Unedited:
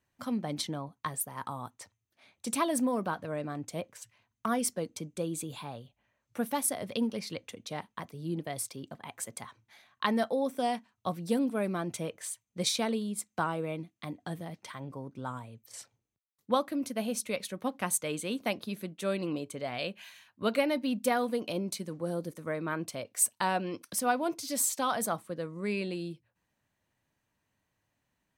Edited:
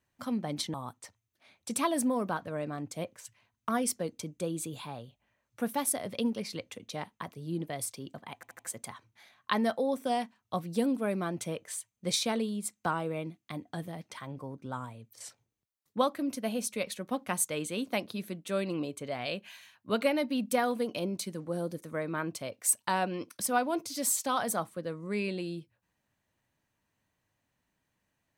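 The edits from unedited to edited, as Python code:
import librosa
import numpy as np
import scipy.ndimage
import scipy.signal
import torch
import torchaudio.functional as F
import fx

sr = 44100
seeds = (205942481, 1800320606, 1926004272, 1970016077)

y = fx.edit(x, sr, fx.cut(start_s=0.74, length_s=0.77),
    fx.stutter(start_s=9.12, slice_s=0.08, count=4), tone=tone)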